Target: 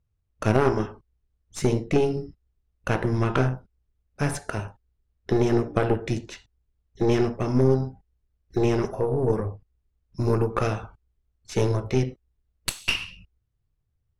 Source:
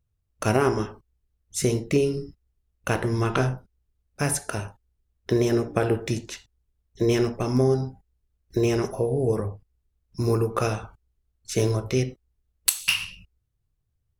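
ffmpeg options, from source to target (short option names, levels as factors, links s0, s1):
-af "aeval=exprs='0.708*(cos(1*acos(clip(val(0)/0.708,-1,1)))-cos(1*PI/2))+0.0562*(cos(8*acos(clip(val(0)/0.708,-1,1)))-cos(8*PI/2))':c=same,aemphasis=mode=reproduction:type=50fm"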